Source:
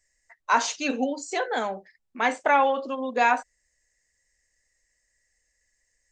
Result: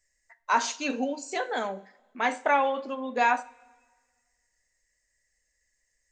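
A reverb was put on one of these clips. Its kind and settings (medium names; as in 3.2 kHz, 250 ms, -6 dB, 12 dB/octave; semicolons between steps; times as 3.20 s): two-slope reverb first 0.37 s, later 1.6 s, from -18 dB, DRR 11.5 dB; trim -3 dB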